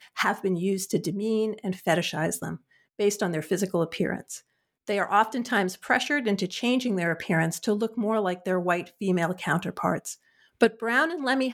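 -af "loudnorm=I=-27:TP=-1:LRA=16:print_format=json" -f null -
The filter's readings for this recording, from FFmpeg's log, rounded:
"input_i" : "-26.4",
"input_tp" : "-8.0",
"input_lra" : "1.7",
"input_thresh" : "-36.8",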